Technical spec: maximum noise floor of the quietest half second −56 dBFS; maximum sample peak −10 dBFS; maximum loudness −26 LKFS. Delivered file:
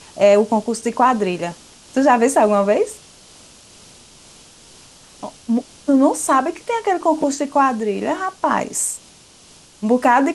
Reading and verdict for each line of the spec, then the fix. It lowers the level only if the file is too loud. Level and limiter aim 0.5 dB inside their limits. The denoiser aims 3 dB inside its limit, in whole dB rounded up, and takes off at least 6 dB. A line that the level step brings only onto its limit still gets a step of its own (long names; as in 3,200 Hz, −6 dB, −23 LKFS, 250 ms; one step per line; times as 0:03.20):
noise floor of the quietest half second −47 dBFS: out of spec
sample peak −3.0 dBFS: out of spec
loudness −18.0 LKFS: out of spec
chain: broadband denoise 6 dB, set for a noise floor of −47 dBFS
level −8.5 dB